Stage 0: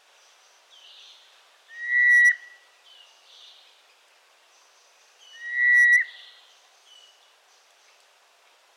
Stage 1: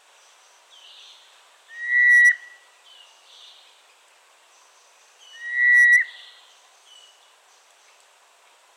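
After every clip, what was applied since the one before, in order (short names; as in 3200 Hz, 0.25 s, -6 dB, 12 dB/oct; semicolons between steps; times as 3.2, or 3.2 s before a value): thirty-one-band EQ 1000 Hz +4 dB, 5000 Hz -4 dB, 8000 Hz +8 dB; gain +2.5 dB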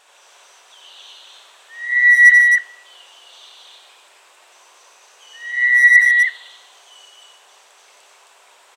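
loudspeakers at several distances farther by 31 m -4 dB, 91 m -1 dB; gain +2 dB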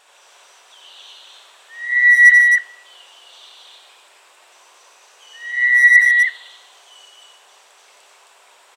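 notch 6300 Hz, Q 26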